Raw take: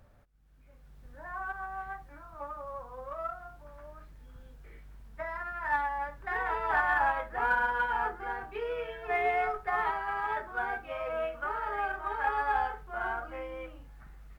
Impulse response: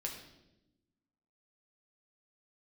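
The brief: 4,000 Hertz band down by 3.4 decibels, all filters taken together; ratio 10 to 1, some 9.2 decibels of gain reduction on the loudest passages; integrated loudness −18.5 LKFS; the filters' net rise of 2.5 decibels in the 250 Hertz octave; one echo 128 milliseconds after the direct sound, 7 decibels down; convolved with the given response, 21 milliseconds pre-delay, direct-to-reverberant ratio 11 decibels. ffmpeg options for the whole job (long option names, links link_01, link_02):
-filter_complex "[0:a]equalizer=frequency=250:width_type=o:gain=3.5,equalizer=frequency=4000:width_type=o:gain=-5,acompressor=threshold=-33dB:ratio=10,aecho=1:1:128:0.447,asplit=2[link_01][link_02];[1:a]atrim=start_sample=2205,adelay=21[link_03];[link_02][link_03]afir=irnorm=-1:irlink=0,volume=-11dB[link_04];[link_01][link_04]amix=inputs=2:normalize=0,volume=18.5dB"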